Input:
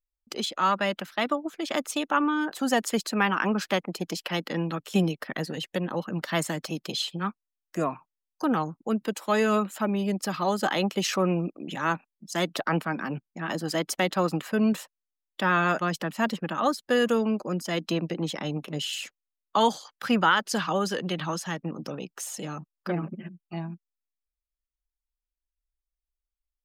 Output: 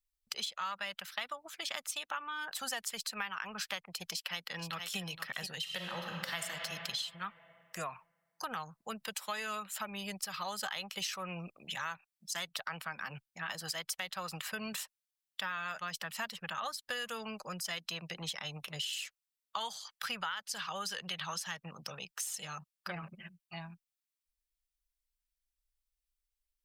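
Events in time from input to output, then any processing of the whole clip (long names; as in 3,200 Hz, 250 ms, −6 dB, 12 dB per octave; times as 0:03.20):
0:04.11–0:04.99: delay throw 470 ms, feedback 15%, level −11.5 dB
0:05.59–0:06.41: thrown reverb, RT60 2.6 s, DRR 1 dB
whole clip: guitar amp tone stack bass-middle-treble 10-0-10; notch filter 6,700 Hz, Q 18; downward compressor 6 to 1, threshold −40 dBFS; level +4.5 dB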